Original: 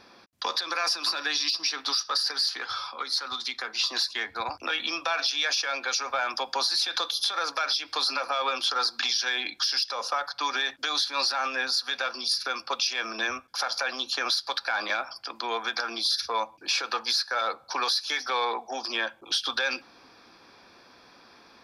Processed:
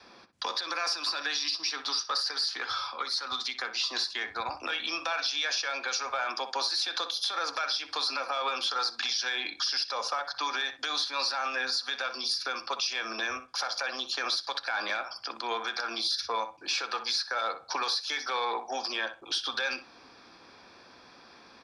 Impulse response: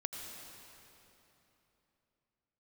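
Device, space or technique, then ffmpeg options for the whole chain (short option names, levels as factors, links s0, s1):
clipper into limiter: -filter_complex "[0:a]asoftclip=type=hard:threshold=0.141,alimiter=limit=0.0891:level=0:latency=1:release=142,asettb=1/sr,asplit=3[s0][s1][s2];[s0]atrim=end=6.284[s3];[s1]atrim=start=6.28:end=7.44,asetpts=PTS-STARTPTS,afade=t=in:d=0.004:c=qsin,afade=t=out:st=1.156:d=0.004:c=qsin,lowshelf=f=150:t=q:w=1.5:g=-13[s4];[s2]atrim=start=7.436[s5];[s3][s4]acrossfade=d=0.004:c1=hsin:c2=qsin[s6];[s6][s5]acrossfade=d=0.004:c1=qsin:c2=hsin,lowpass=f=9600:w=0.5412,lowpass=f=9600:w=1.3066,asplit=2[s7][s8];[s8]adelay=62,lowpass=f=2200:p=1,volume=0.316,asplit=2[s9][s10];[s10]adelay=62,lowpass=f=2200:p=1,volume=0.16[s11];[s7][s9][s11]amix=inputs=3:normalize=0,adynamicequalizer=threshold=0.002:dfrequency=210:dqfactor=1.2:tfrequency=210:tqfactor=1.2:attack=5:release=100:ratio=0.375:range=2:mode=cutabove:tftype=bell"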